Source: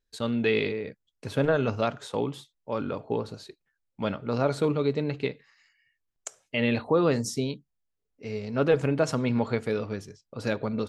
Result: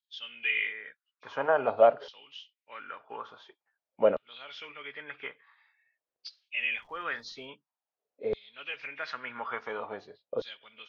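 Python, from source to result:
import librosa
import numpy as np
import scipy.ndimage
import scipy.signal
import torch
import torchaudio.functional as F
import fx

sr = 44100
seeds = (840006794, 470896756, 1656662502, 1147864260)

y = fx.freq_compress(x, sr, knee_hz=2200.0, ratio=1.5)
y = fx.filter_lfo_highpass(y, sr, shape='saw_down', hz=0.48, low_hz=480.0, high_hz=3900.0, q=3.4)
y = fx.dmg_crackle(y, sr, seeds[0], per_s=270.0, level_db=-50.0, at=(6.59, 7.46), fade=0.02)
y = fx.riaa(y, sr, side='playback')
y = y * librosa.db_to_amplitude(-1.5)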